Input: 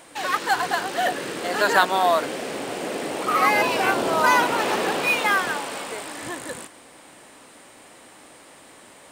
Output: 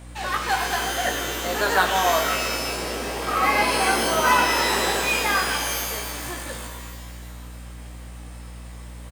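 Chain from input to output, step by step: hum 60 Hz, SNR 16 dB; doubler 17 ms -5 dB; shimmer reverb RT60 1.4 s, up +12 st, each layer -2 dB, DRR 4.5 dB; gain -4 dB

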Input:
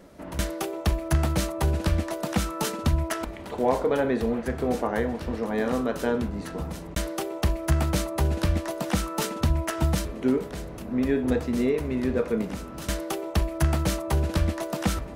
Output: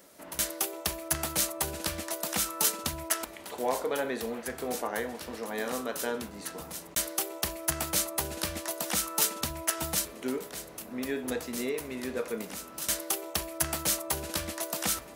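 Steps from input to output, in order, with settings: RIAA curve recording; gain -4.5 dB

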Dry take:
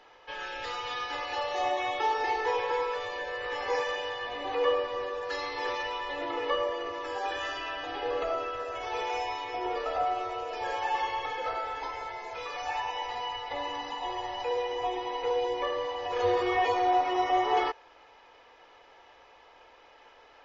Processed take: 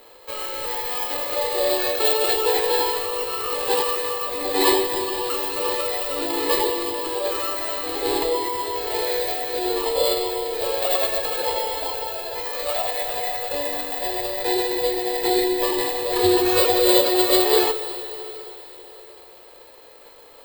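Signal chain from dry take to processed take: sample sorter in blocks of 8 samples; formant shift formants -5 st; digital reverb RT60 3.9 s, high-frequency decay 1×, pre-delay 50 ms, DRR 11 dB; gain +8.5 dB

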